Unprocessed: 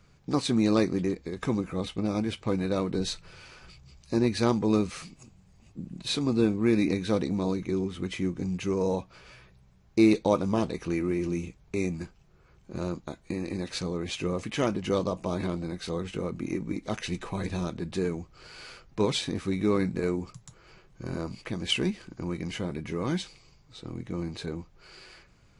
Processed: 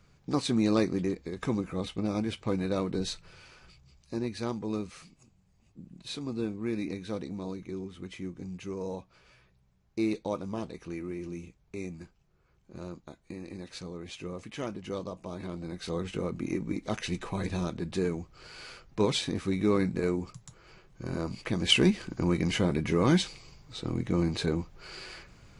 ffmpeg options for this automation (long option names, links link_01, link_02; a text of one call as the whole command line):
ffmpeg -i in.wav -af "volume=13dB,afade=type=out:start_time=2.87:duration=1.44:silence=0.446684,afade=type=in:start_time=15.42:duration=0.59:silence=0.375837,afade=type=in:start_time=21.11:duration=0.9:silence=0.473151" out.wav